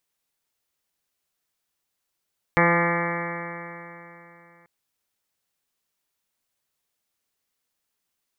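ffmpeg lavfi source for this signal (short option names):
-f lavfi -i "aevalsrc='0.0794*pow(10,-3*t/3.2)*sin(2*PI*170.03*t)+0.0562*pow(10,-3*t/3.2)*sin(2*PI*340.25*t)+0.0794*pow(10,-3*t/3.2)*sin(2*PI*510.85*t)+0.0355*pow(10,-3*t/3.2)*sin(2*PI*682.01*t)+0.0631*pow(10,-3*t/3.2)*sin(2*PI*853.92*t)+0.0422*pow(10,-3*t/3.2)*sin(2*PI*1026.77*t)+0.0668*pow(10,-3*t/3.2)*sin(2*PI*1200.74*t)+0.0299*pow(10,-3*t/3.2)*sin(2*PI*1376.01*t)+0.0251*pow(10,-3*t/3.2)*sin(2*PI*1552.76*t)+0.0631*pow(10,-3*t/3.2)*sin(2*PI*1731.16*t)+0.0562*pow(10,-3*t/3.2)*sin(2*PI*1911.4*t)+0.0562*pow(10,-3*t/3.2)*sin(2*PI*2093.64*t)+0.0376*pow(10,-3*t/3.2)*sin(2*PI*2278.05*t)':d=2.09:s=44100"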